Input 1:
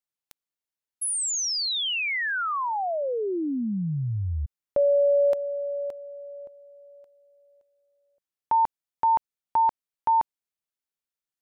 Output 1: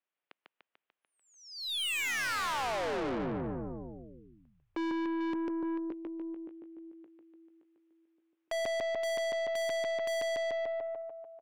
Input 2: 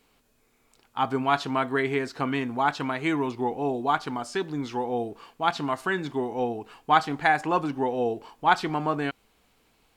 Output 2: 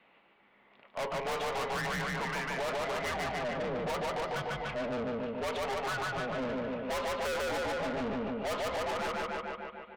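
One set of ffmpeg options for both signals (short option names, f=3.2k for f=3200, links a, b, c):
-af "highpass=f=540:t=q:w=0.5412,highpass=f=540:t=q:w=1.307,lowpass=f=3.3k:t=q:w=0.5176,lowpass=f=3.3k:t=q:w=0.7071,lowpass=f=3.3k:t=q:w=1.932,afreqshift=-240,aecho=1:1:147|294|441|588|735|882|1029|1176|1323:0.708|0.418|0.246|0.145|0.0858|0.0506|0.0299|0.0176|0.0104,aeval=exprs='(tanh(70.8*val(0)+0.1)-tanh(0.1))/70.8':c=same,volume=5dB"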